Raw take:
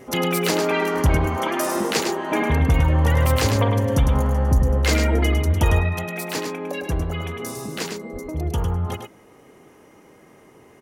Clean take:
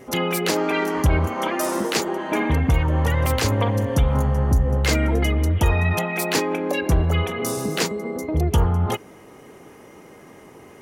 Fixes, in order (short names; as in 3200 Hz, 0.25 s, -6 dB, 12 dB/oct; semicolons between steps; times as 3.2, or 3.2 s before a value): 8.12–8.24 HPF 140 Hz 24 dB/oct; inverse comb 0.104 s -6 dB; 5.79 gain correction +6 dB